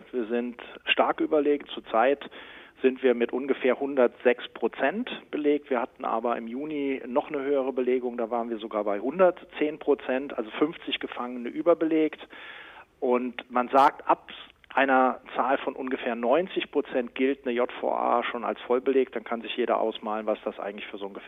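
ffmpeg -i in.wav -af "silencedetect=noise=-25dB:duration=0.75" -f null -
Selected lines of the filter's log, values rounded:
silence_start: 12.13
silence_end: 13.03 | silence_duration: 0.90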